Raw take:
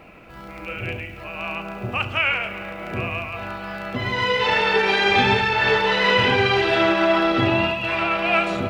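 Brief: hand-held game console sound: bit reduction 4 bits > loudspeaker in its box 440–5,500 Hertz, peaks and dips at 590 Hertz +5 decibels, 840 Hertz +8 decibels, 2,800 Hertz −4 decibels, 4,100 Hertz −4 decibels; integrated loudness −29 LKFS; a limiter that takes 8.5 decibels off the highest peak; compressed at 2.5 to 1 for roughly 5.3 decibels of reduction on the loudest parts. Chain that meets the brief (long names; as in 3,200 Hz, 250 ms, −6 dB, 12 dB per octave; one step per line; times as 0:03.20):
downward compressor 2.5 to 1, threshold −22 dBFS
brickwall limiter −19.5 dBFS
bit reduction 4 bits
loudspeaker in its box 440–5,500 Hz, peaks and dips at 590 Hz +5 dB, 840 Hz +8 dB, 2,800 Hz −4 dB, 4,100 Hz −4 dB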